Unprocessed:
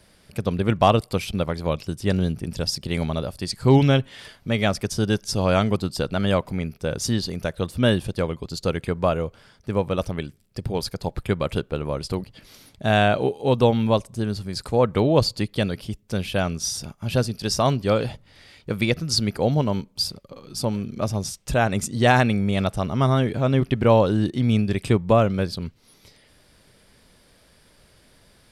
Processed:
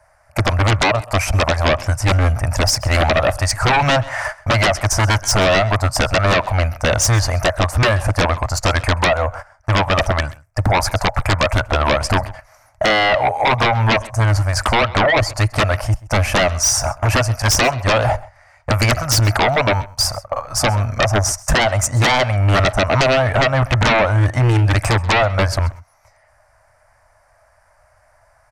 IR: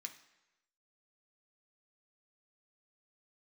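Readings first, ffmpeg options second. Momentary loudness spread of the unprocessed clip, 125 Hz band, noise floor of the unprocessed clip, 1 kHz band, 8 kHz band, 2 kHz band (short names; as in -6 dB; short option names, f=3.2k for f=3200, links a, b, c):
11 LU, +7.0 dB, -57 dBFS, +9.0 dB, +12.5 dB, +12.5 dB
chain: -filter_complex "[0:a]agate=range=-19dB:threshold=-42dB:ratio=16:detection=peak,firequalizer=gain_entry='entry(110,0);entry(170,-24);entry(260,-19);entry(380,-26);entry(620,11);entry(2000,2);entry(3400,-23);entry(5900,-2);entry(11000,-8)':delay=0.05:min_phase=1,acompressor=threshold=-22dB:ratio=8,aeval=exprs='0.188*sin(PI/2*3.55*val(0)/0.188)':c=same,asplit=2[a][b];[b]aecho=0:1:131:0.0891[c];[a][c]amix=inputs=2:normalize=0,volume=4dB"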